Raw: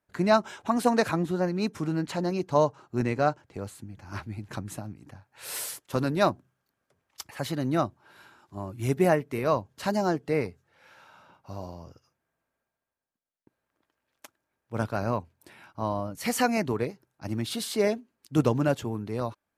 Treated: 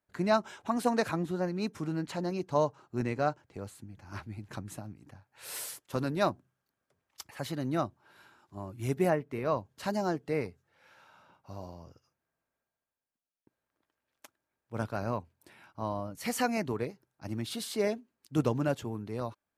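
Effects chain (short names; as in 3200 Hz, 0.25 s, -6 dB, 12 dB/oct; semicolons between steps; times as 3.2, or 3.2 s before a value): 9.09–9.56 high shelf 3800 Hz -> 6000 Hz -10.5 dB; gain -5 dB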